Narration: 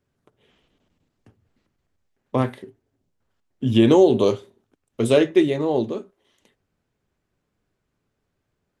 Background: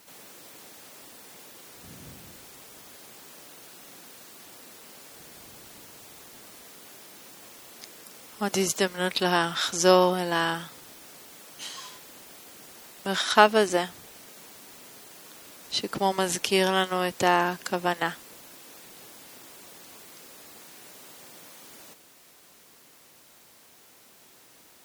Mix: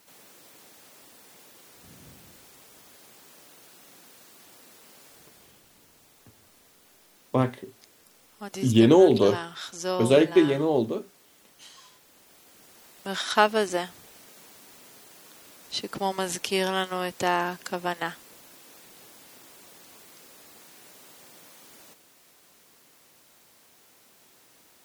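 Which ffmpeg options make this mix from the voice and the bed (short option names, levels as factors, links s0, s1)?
-filter_complex "[0:a]adelay=5000,volume=0.794[s0];[1:a]volume=1.41,afade=t=out:st=5.08:d=0.54:silence=0.501187,afade=t=in:st=12.03:d=1.28:silence=0.421697[s1];[s0][s1]amix=inputs=2:normalize=0"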